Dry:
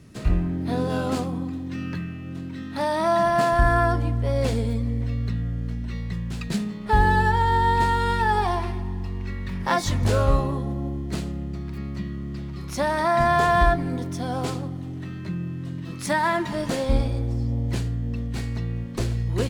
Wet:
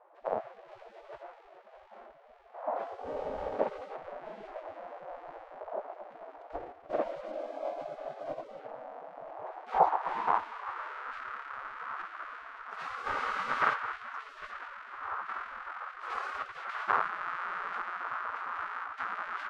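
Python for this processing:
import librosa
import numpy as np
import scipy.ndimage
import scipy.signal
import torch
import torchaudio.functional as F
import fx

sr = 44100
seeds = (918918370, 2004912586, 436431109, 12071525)

y = fx.halfwave_hold(x, sr)
y = fx.dmg_wind(y, sr, seeds[0], corner_hz=220.0, level_db=-22.0)
y = fx.spec_gate(y, sr, threshold_db=-25, keep='weak')
y = fx.filter_sweep_lowpass(y, sr, from_hz=640.0, to_hz=1300.0, start_s=9.22, end_s=11.04, q=3.7)
y = F.gain(torch.from_numpy(y), -3.5).numpy()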